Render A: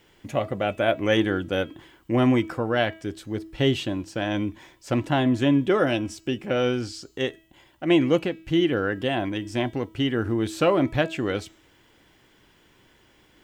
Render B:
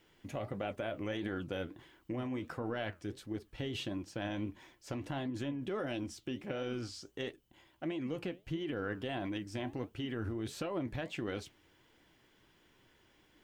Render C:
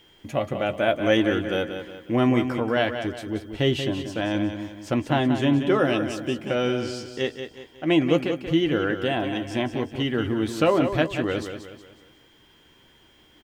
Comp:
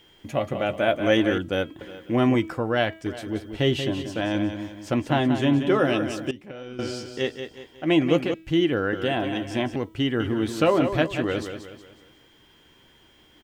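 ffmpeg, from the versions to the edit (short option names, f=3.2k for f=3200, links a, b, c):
-filter_complex "[0:a]asplit=4[a][b][c][d];[2:a]asplit=6[e][f][g][h][i][j];[e]atrim=end=1.382[k];[a]atrim=start=1.378:end=1.812[l];[f]atrim=start=1.808:end=2.352[m];[b]atrim=start=2.348:end=3.062[n];[g]atrim=start=3.058:end=6.312[o];[1:a]atrim=start=6.308:end=6.792[p];[h]atrim=start=6.788:end=8.342[q];[c]atrim=start=8.338:end=8.932[r];[i]atrim=start=8.928:end=9.762[s];[d]atrim=start=9.758:end=10.202[t];[j]atrim=start=10.198[u];[k][l]acrossfade=d=0.004:c1=hsin:c2=hsin[v];[v][m]acrossfade=d=0.004:c1=hsin:c2=hsin[w];[w][n]acrossfade=d=0.004:c1=hsin:c2=hsin[x];[x][o]acrossfade=d=0.004:c1=hsin:c2=hsin[y];[y][p]acrossfade=d=0.004:c1=hsin:c2=hsin[z];[z][q]acrossfade=d=0.004:c1=hsin:c2=hsin[aa];[aa][r]acrossfade=d=0.004:c1=hsin:c2=hsin[ab];[ab][s]acrossfade=d=0.004:c1=hsin:c2=hsin[ac];[ac][t]acrossfade=d=0.004:c1=hsin:c2=hsin[ad];[ad][u]acrossfade=d=0.004:c1=hsin:c2=hsin"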